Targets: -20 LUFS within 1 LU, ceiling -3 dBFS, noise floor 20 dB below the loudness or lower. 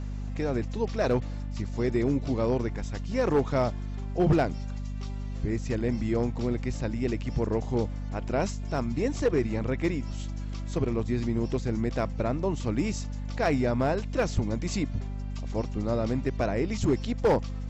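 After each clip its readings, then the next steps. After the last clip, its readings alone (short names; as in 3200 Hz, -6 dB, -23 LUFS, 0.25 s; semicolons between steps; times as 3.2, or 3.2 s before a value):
clipped 0.5%; flat tops at -17.0 dBFS; hum 50 Hz; harmonics up to 250 Hz; hum level -31 dBFS; loudness -29.0 LUFS; peak -17.0 dBFS; loudness target -20.0 LUFS
-> clip repair -17 dBFS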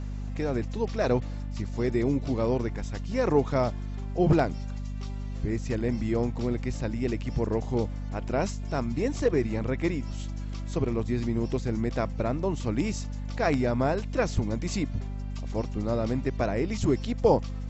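clipped 0.0%; hum 50 Hz; harmonics up to 250 Hz; hum level -31 dBFS
-> notches 50/100/150/200/250 Hz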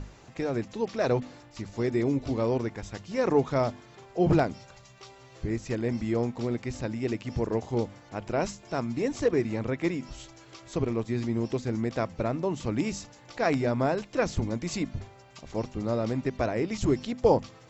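hum none; loudness -29.5 LUFS; peak -10.0 dBFS; loudness target -20.0 LUFS
-> gain +9.5 dB; limiter -3 dBFS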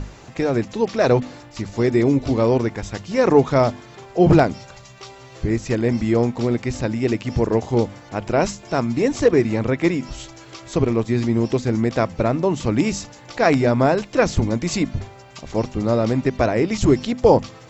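loudness -20.0 LUFS; peak -3.0 dBFS; noise floor -44 dBFS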